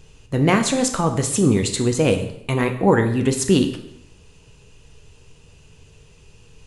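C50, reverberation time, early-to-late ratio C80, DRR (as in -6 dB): 9.5 dB, 0.75 s, 12.5 dB, 5.5 dB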